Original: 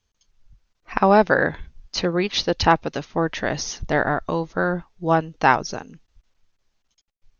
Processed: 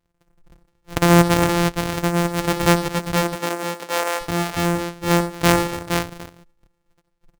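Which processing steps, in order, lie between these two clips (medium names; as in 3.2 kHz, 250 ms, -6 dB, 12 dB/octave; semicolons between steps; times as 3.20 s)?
sorted samples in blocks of 256 samples; 2.91–4.19 s: high-pass 150 Hz -> 480 Hz 24 dB/octave; multi-tap echo 64/87/93/230/468 ms -15/-17.5/-19.5/-18.5/-5.5 dB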